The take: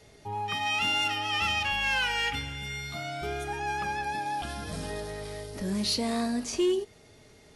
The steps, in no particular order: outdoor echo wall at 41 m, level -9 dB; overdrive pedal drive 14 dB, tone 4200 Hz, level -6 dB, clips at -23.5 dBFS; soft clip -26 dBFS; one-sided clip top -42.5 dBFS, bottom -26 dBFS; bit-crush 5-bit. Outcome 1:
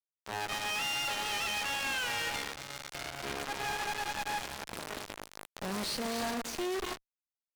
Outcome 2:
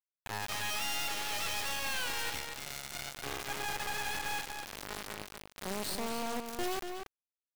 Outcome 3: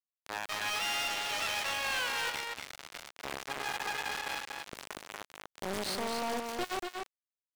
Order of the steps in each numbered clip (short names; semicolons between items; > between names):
outdoor echo > bit-crush > soft clip > overdrive pedal > one-sided clip; overdrive pedal > one-sided clip > bit-crush > outdoor echo > soft clip; one-sided clip > bit-crush > outdoor echo > soft clip > overdrive pedal